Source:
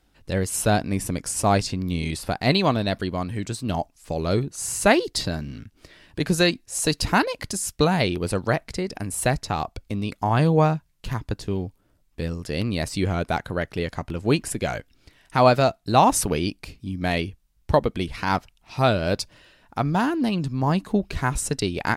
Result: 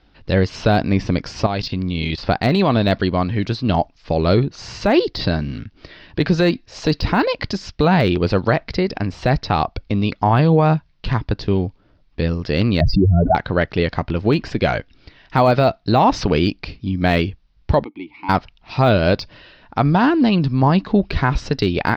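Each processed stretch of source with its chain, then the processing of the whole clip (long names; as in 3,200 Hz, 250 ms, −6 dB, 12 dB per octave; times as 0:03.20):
0:01.46–0:02.18: dynamic equaliser 3,200 Hz, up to +6 dB, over −44 dBFS, Q 1.8 + output level in coarse steps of 15 dB
0:12.81–0:13.35: expanding power law on the bin magnitudes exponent 3.3 + low-pass filter 1,800 Hz + envelope flattener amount 100%
0:17.84–0:18.29: formant filter u + low-shelf EQ 330 Hz −7.5 dB
whole clip: Butterworth low-pass 5,100 Hz 48 dB per octave; de-essing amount 80%; brickwall limiter −14 dBFS; level +8.5 dB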